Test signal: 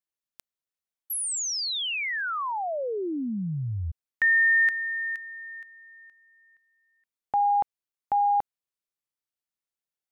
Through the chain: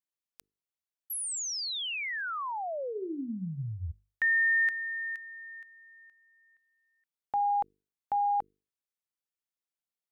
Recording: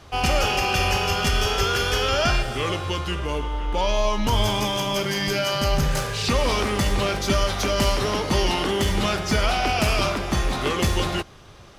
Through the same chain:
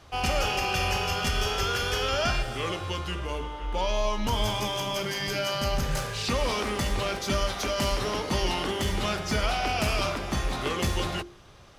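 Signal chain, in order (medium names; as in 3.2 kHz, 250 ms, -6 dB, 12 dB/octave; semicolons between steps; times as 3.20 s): hum notches 50/100/150/200/250/300/350/400/450 Hz; trim -5 dB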